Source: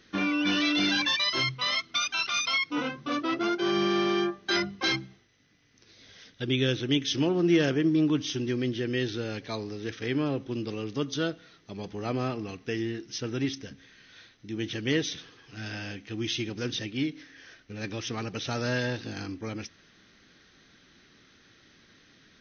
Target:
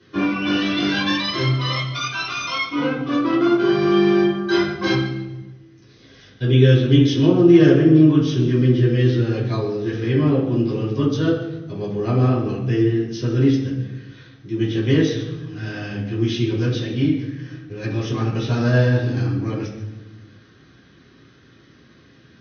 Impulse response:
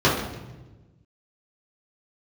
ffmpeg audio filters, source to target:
-filter_complex "[1:a]atrim=start_sample=2205[link_01];[0:a][link_01]afir=irnorm=-1:irlink=0,volume=-14.5dB"

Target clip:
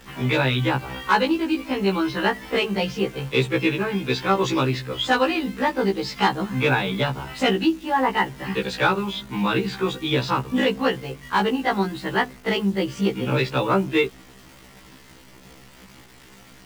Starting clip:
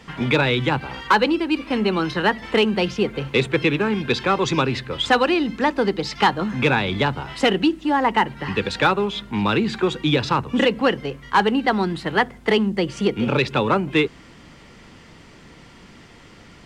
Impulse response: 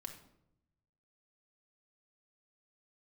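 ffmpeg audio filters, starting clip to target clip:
-af "acrusher=bits=8:dc=4:mix=0:aa=0.000001,afftfilt=real='re*1.73*eq(mod(b,3),0)':imag='im*1.73*eq(mod(b,3),0)':win_size=2048:overlap=0.75"

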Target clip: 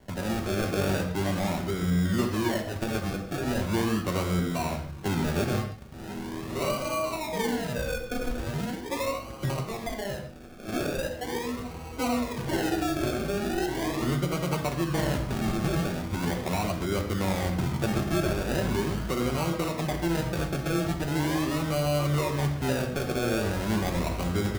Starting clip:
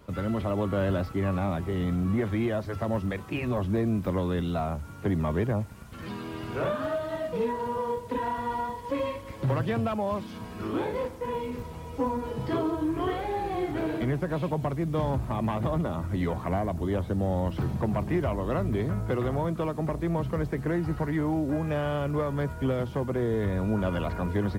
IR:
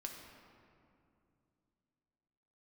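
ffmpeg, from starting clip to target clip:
-filter_complex "[0:a]asettb=1/sr,asplit=3[link_01][link_02][link_03];[link_01]atrim=end=9.504[link_04];[link_02]atrim=start=9.5:end=10.68,asetpts=PTS-STARTPTS,afade=type=in:duration=0.004:curve=qsin,afade=type=out:start_time=1.176:duration=0.004:curve=qsin,highpass=frequency=760:poles=1[link_05];[link_03]atrim=start=10.676[link_06];[link_04][link_05]acrossfade=duration=0.004:curve1=hsin:curve2=qsin[link_07];[link_07][link_06]acrossfade=duration=0.004:curve1=qsin:curve2=hsin,acrusher=samples=35:mix=1:aa=0.000001:lfo=1:lforange=21:lforate=0.4[link_08];[1:a]atrim=start_sample=2205,atrim=end_sample=6615[link_09];[link_08][link_09]afir=irnorm=-1:irlink=0,volume=3.5dB"

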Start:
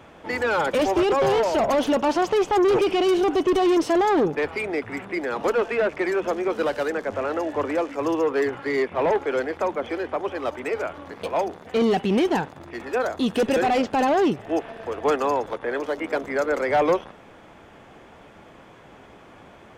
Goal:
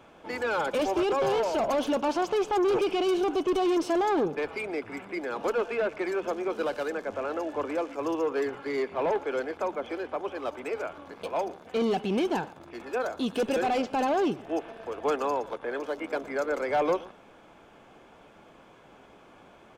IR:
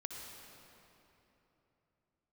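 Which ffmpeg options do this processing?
-filter_complex "[0:a]equalizer=frequency=87:width_type=o:width=1.5:gain=-6,bandreject=frequency=1900:width=8.3,asplit=2[link_01][link_02];[link_02]aecho=0:1:118:0.0944[link_03];[link_01][link_03]amix=inputs=2:normalize=0,volume=-5.5dB"

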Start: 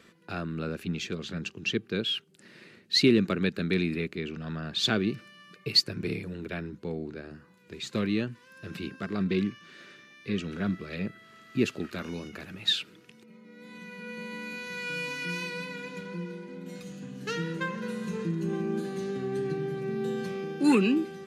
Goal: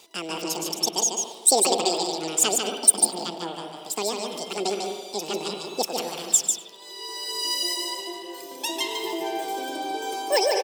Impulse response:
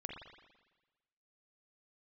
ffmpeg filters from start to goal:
-filter_complex "[0:a]asetrate=88200,aresample=44100,highshelf=frequency=2300:gain=10.5,aecho=1:1:99:0.075,asplit=2[link_01][link_02];[1:a]atrim=start_sample=2205,lowshelf=frequency=76:gain=9.5,adelay=147[link_03];[link_02][link_03]afir=irnorm=-1:irlink=0,volume=0dB[link_04];[link_01][link_04]amix=inputs=2:normalize=0,volume=-1dB"

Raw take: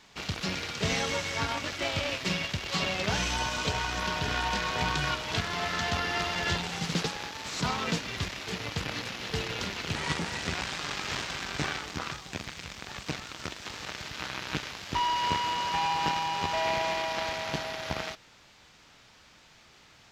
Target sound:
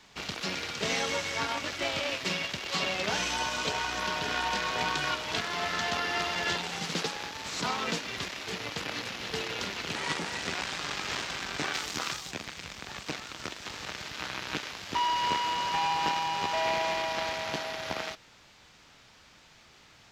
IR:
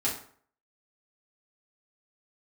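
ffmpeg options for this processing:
-filter_complex "[0:a]asplit=3[link_01][link_02][link_03];[link_01]afade=type=out:start_time=11.73:duration=0.02[link_04];[link_02]highshelf=frequency=3800:gain=10.5,afade=type=in:start_time=11.73:duration=0.02,afade=type=out:start_time=12.3:duration=0.02[link_05];[link_03]afade=type=in:start_time=12.3:duration=0.02[link_06];[link_04][link_05][link_06]amix=inputs=3:normalize=0,acrossover=split=210[link_07][link_08];[link_07]acompressor=threshold=-48dB:ratio=6[link_09];[link_09][link_08]amix=inputs=2:normalize=0"

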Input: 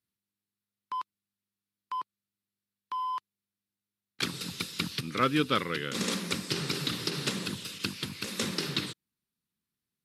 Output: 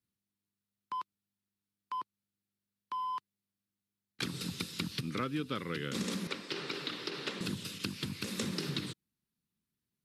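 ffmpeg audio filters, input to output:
ffmpeg -i in.wav -filter_complex "[0:a]acrossover=split=370|5800[link_01][link_02][link_03];[link_01]acontrast=52[link_04];[link_04][link_02][link_03]amix=inputs=3:normalize=0,asettb=1/sr,asplit=3[link_05][link_06][link_07];[link_05]atrim=end=6.274[link_08];[link_06]atrim=start=6.27:end=7.41,asetpts=PTS-STARTPTS,afade=type=in:duration=0.004:curve=qsin,afade=type=out:start_time=1.136:duration=0.004:curve=qsin,acrossover=split=330 4600:gain=0.0891 1 0.158[link_09][link_10][link_11];[link_09][link_10][link_11]amix=inputs=3:normalize=0[link_12];[link_07]atrim=start=7.406[link_13];[link_08][link_12]acrossfade=duration=0.004:curve1=hsin:curve2=qsin[link_14];[link_14][link_13]acrossfade=duration=0.004:curve1=qsin:curve2=hsin,acompressor=threshold=-29dB:ratio=6,volume=-3dB" out.wav

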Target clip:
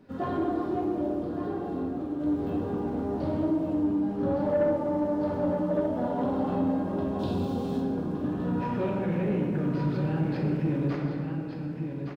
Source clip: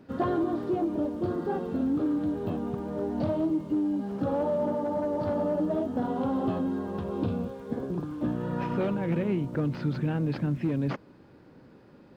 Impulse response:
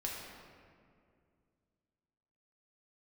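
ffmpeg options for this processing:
-filter_complex "[0:a]asettb=1/sr,asplit=3[link_01][link_02][link_03];[link_01]atrim=end=3.844[link_04];[link_02]atrim=start=3.84:end=4.46,asetpts=PTS-STARTPTS,afade=type=in:duration=0.004:curve=qsin,afade=type=out:start_time=0.616:duration=0.004:curve=qsin,bass=frequency=250:gain=3,treble=frequency=4000:gain=-4[link_05];[link_03]atrim=start=4.456[link_06];[link_04][link_05]acrossfade=duration=0.004:curve1=hsin:curve2=qsin[link_07];[link_07][link_06]acrossfade=duration=0.004:curve1=qsin:curve2=hsin,aecho=1:1:1166:0.447,asettb=1/sr,asplit=3[link_08][link_09][link_10];[link_08]atrim=end=1.144[link_11];[link_09]atrim=start=1.14:end=2.2,asetpts=PTS-STARTPTS,afade=type=in:duration=0.004:curve=qsin,afade=type=out:start_time=1.056:duration=0.004:curve=qsin,acompressor=threshold=-29dB:ratio=6[link_12];[link_10]atrim=start=2.196[link_13];[link_11][link_12]acrossfade=duration=0.004:curve1=hsin:curve2=qsin[link_14];[link_14][link_13]acrossfade=duration=0.004:curve1=qsin:curve2=hsin,asettb=1/sr,asplit=3[link_15][link_16][link_17];[link_15]atrim=end=7.194[link_18];[link_16]atrim=start=7.19:end=7.8,asetpts=PTS-STARTPTS,afade=type=in:duration=0.004:curve=qsin,afade=type=out:start_time=0.606:duration=0.004:curve=qsin,highshelf=frequency=2800:width_type=q:width=1.5:gain=10[link_19];[link_17]atrim=start=7.796[link_20];[link_18][link_19]acrossfade=duration=0.004:curve1=hsin:curve2=qsin[link_21];[link_21][link_20]acrossfade=duration=0.004:curve1=qsin:curve2=hsin[link_22];[1:a]atrim=start_sample=2205[link_23];[link_22][link_23]afir=irnorm=-1:irlink=0,asoftclip=type=tanh:threshold=-15.5dB,volume=-1.5dB"

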